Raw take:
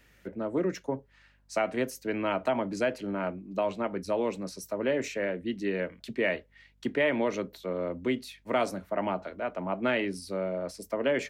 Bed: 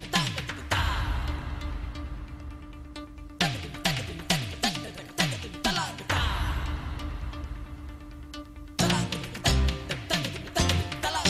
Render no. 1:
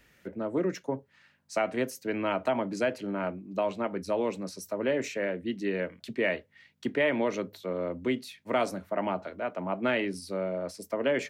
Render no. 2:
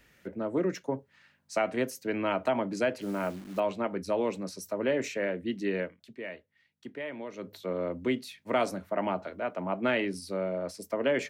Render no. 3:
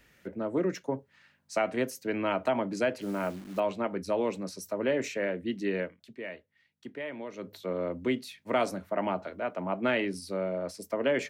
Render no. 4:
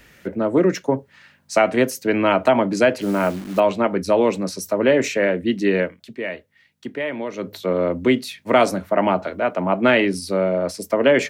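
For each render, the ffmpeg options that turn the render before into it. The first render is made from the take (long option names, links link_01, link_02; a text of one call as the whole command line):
ffmpeg -i in.wav -af "bandreject=frequency=50:width_type=h:width=4,bandreject=frequency=100:width_type=h:width=4" out.wav
ffmpeg -i in.wav -filter_complex "[0:a]asettb=1/sr,asplit=3[link_01][link_02][link_03];[link_01]atrim=end=3.014[link_04];[link_02]atrim=start=3.01:end=3.6,asetpts=PTS-STARTPTS,afade=type=in:duration=0.004:curve=qsin,afade=type=out:start_time=0.586:duration=0.004:curve=qsin,acrusher=bits=9:dc=4:mix=0:aa=0.000001[link_05];[link_03]atrim=start=3.596[link_06];[link_04][link_05]acrossfade=duration=0.004:curve1=hsin:curve2=qsin[link_07];[link_07][link_06]acrossfade=duration=0.004:curve1=qsin:curve2=hsin,asplit=3[link_08][link_09][link_10];[link_08]atrim=end=5.97,asetpts=PTS-STARTPTS,afade=type=out:start_time=5.79:duration=0.18:silence=0.251189[link_11];[link_09]atrim=start=5.97:end=7.36,asetpts=PTS-STARTPTS,volume=-12dB[link_12];[link_10]atrim=start=7.36,asetpts=PTS-STARTPTS,afade=type=in:duration=0.18:silence=0.251189[link_13];[link_11][link_12][link_13]concat=n=3:v=0:a=1" out.wav
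ffmpeg -i in.wav -af anull out.wav
ffmpeg -i in.wav -af "volume=12dB" out.wav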